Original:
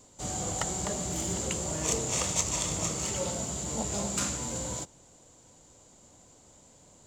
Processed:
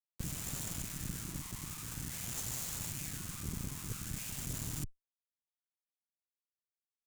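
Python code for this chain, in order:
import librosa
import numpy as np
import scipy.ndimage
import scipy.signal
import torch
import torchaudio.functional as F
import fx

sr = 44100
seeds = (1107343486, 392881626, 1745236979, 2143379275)

p1 = fx.wah_lfo(x, sr, hz=0.48, low_hz=520.0, high_hz=2000.0, q=2.8)
p2 = p1 + fx.echo_feedback(p1, sr, ms=101, feedback_pct=55, wet_db=-19.0, dry=0)
p3 = fx.schmitt(p2, sr, flips_db=-51.5)
p4 = scipy.signal.sosfilt(scipy.signal.cheby1(3, 1.0, [160.0, 6800.0], 'bandstop', fs=sr, output='sos'), p3)
p5 = fx.peak_eq(p4, sr, hz=110.0, db=3.5, octaves=0.72)
p6 = fx.cheby_harmonics(p5, sr, harmonics=(3, 6), levels_db=(-19, -15), full_scale_db=-40.0)
y = F.gain(torch.from_numpy(p6), 16.0).numpy()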